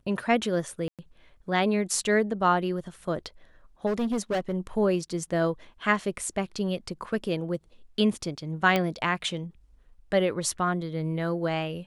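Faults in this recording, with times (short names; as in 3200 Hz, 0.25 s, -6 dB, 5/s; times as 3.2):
0.88–0.99 gap 0.107 s
3.86–4.54 clipped -23.5 dBFS
8.76 pop -11 dBFS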